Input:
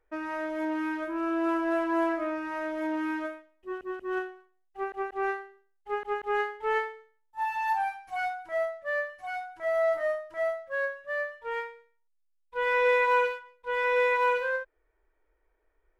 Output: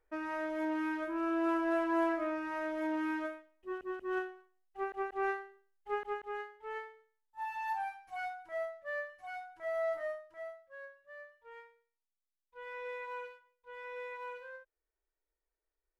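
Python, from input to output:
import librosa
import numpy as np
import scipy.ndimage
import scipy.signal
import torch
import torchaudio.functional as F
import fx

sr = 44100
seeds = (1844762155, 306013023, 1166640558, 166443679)

y = fx.gain(x, sr, db=fx.line((6.01, -4.0), (6.49, -16.0), (7.54, -8.5), (10.0, -8.5), (10.67, -19.0)))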